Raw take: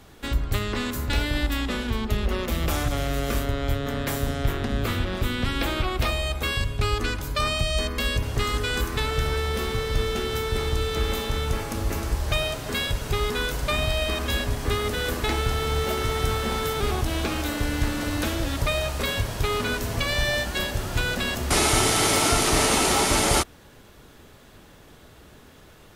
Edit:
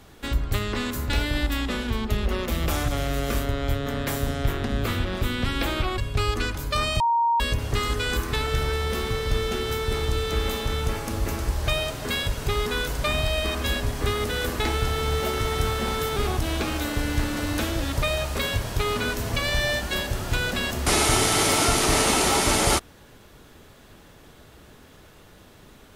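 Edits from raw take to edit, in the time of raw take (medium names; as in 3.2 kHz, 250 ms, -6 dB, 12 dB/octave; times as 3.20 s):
5.98–6.62 s: delete
7.64–8.04 s: bleep 933 Hz -18 dBFS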